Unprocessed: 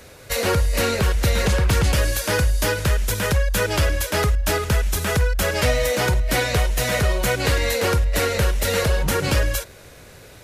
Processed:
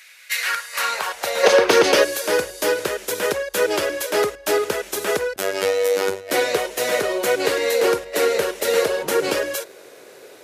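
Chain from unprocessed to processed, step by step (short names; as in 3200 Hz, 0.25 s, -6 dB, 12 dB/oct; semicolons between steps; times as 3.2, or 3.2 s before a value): 1.43–2.04 spectral gain 200–6600 Hz +8 dB; 5.36–6.31 robotiser 96.7 Hz; high-pass sweep 2100 Hz -> 390 Hz, 0.29–1.74; gain -1 dB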